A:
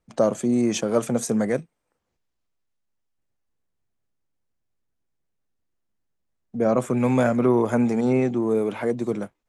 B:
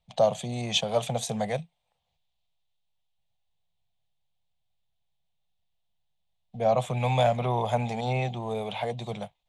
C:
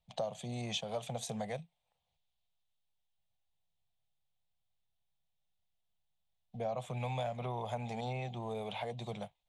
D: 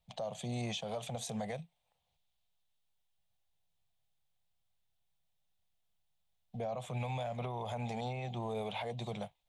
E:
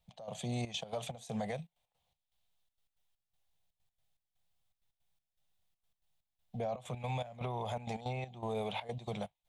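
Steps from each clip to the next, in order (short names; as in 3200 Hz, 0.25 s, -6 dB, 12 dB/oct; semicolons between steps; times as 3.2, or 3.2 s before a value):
EQ curve 170 Hz 0 dB, 290 Hz -24 dB, 750 Hz +6 dB, 1400 Hz -12 dB, 3600 Hz +12 dB, 5200 Hz -3 dB, 10000 Hz -6 dB
compressor 3:1, threshold -31 dBFS, peak gain reduction 11 dB; gain -5.5 dB
limiter -32.5 dBFS, peak gain reduction 7.5 dB; gain +2.5 dB
step gate "x..xxxx.x.x" 162 bpm -12 dB; gain +1.5 dB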